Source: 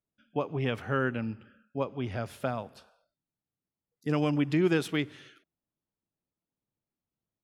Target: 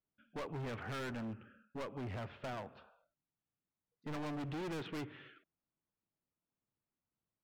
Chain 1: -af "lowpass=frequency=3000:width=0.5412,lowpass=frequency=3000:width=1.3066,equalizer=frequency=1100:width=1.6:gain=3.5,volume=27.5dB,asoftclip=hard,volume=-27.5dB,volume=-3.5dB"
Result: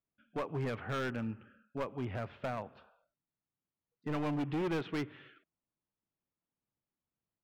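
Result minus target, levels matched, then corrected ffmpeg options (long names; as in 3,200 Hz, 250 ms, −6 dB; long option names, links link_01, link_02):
gain into a clipping stage and back: distortion −4 dB
-af "lowpass=frequency=3000:width=0.5412,lowpass=frequency=3000:width=1.3066,equalizer=frequency=1100:width=1.6:gain=3.5,volume=36dB,asoftclip=hard,volume=-36dB,volume=-3.5dB"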